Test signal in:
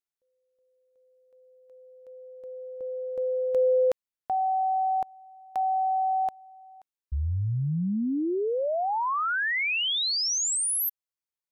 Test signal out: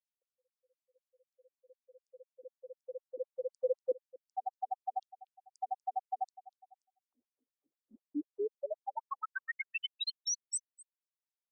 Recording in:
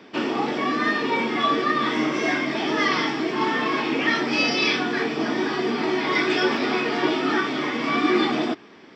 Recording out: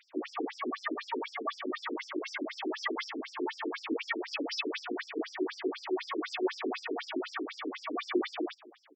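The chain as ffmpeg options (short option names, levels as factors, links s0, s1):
-af "aecho=1:1:241:0.0944,afftfilt=real='re*between(b*sr/1024,310*pow(6900/310,0.5+0.5*sin(2*PI*4*pts/sr))/1.41,310*pow(6900/310,0.5+0.5*sin(2*PI*4*pts/sr))*1.41)':imag='im*between(b*sr/1024,310*pow(6900/310,0.5+0.5*sin(2*PI*4*pts/sr))/1.41,310*pow(6900/310,0.5+0.5*sin(2*PI*4*pts/sr))*1.41)':win_size=1024:overlap=0.75,volume=0.562"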